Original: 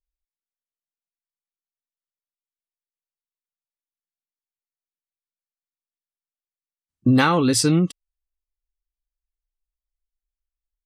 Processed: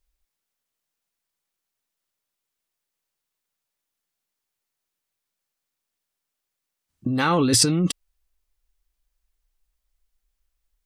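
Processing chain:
compressor whose output falls as the input rises −25 dBFS, ratio −1
level +5 dB

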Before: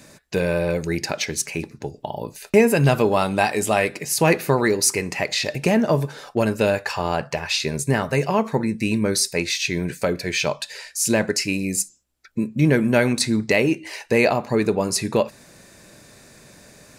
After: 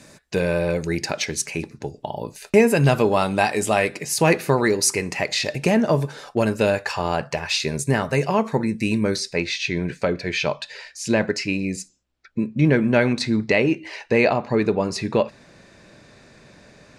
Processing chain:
low-pass filter 11,000 Hz 12 dB per octave, from 0:09.16 4,300 Hz

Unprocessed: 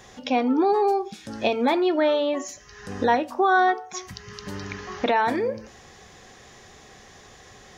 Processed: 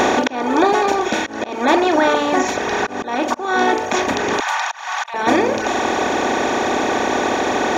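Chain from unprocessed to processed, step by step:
compressor on every frequency bin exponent 0.2
reverb reduction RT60 1.4 s
0:04.40–0:05.14: Butterworth high-pass 820 Hz 36 dB per octave
volume swells 287 ms
level +2.5 dB

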